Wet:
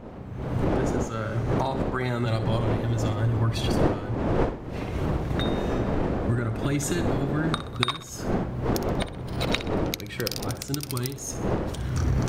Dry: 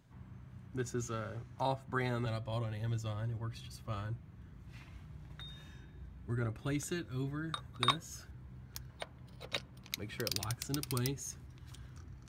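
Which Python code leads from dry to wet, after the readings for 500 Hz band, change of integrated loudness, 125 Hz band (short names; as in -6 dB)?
+15.5 dB, +11.5 dB, +13.0 dB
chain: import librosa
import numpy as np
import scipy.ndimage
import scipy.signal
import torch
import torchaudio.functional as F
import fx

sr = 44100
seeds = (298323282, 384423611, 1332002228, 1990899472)

y = fx.dmg_wind(x, sr, seeds[0], corner_hz=440.0, level_db=-36.0)
y = fx.recorder_agc(y, sr, target_db=-17.0, rise_db_per_s=40.0, max_gain_db=30)
y = fx.echo_feedback(y, sr, ms=63, feedback_pct=42, wet_db=-12.5)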